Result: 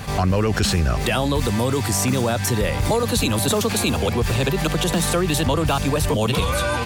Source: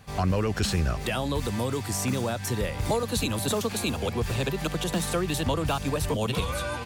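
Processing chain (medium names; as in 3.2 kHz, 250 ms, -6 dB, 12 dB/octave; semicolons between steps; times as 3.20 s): level flattener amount 50%; trim +5 dB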